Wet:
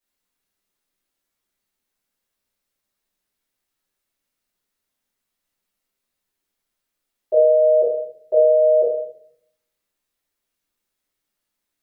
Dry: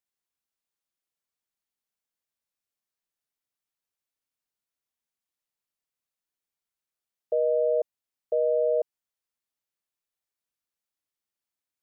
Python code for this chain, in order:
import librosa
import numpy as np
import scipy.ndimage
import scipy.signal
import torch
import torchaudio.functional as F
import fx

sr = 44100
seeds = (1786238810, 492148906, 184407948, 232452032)

y = fx.room_shoebox(x, sr, seeds[0], volume_m3=95.0, walls='mixed', distance_m=2.7)